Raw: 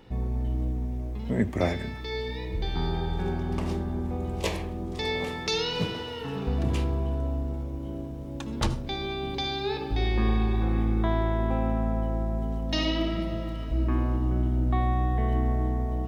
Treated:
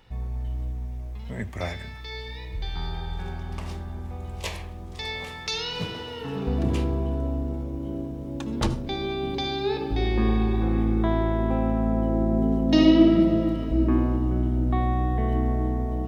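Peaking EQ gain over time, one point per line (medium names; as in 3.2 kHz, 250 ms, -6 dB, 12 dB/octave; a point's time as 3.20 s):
peaking EQ 300 Hz 2 oct
5.47 s -12 dB
5.97 s -2 dB
6.54 s +5 dB
11.75 s +5 dB
12.37 s +14.5 dB
13.48 s +14.5 dB
14.29 s +4 dB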